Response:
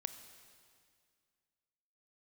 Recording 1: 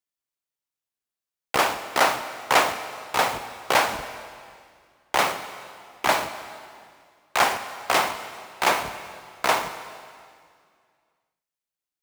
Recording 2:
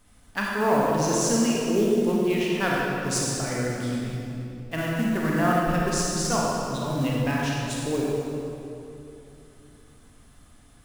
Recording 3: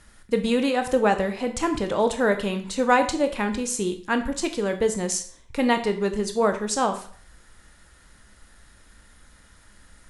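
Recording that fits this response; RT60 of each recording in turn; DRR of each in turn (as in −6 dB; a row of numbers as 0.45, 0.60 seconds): 1; 2.1, 2.9, 0.50 seconds; 9.5, −4.5, 7.0 decibels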